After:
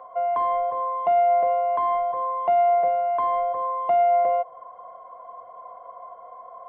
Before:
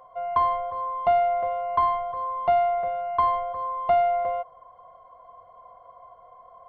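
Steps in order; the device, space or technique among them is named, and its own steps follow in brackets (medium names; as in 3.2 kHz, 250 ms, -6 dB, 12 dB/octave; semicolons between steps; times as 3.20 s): DJ mixer with the lows and highs turned down (three-band isolator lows -17 dB, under 210 Hz, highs -18 dB, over 2.4 kHz; peak limiter -20.5 dBFS, peak gain reduction 8 dB); dynamic bell 1.3 kHz, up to -8 dB, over -44 dBFS, Q 1.9; trim +7.5 dB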